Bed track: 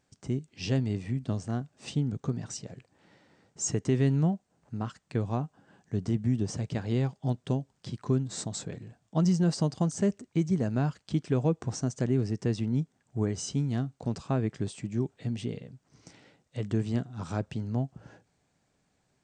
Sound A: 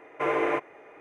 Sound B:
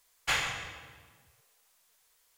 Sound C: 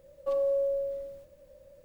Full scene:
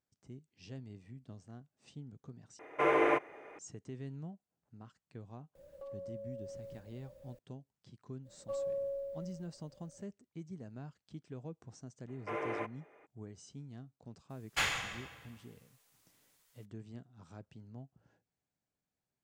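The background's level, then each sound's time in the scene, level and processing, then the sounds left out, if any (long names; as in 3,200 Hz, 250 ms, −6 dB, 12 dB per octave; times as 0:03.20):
bed track −19.5 dB
0:02.59: overwrite with A −2 dB
0:05.55: mix in C −3 dB + downward compressor 8 to 1, threshold −42 dBFS
0:08.22: mix in C −9.5 dB, fades 0.05 s
0:12.07: mix in A −12 dB, fades 0.02 s
0:14.29: mix in B −3 dB, fades 0.02 s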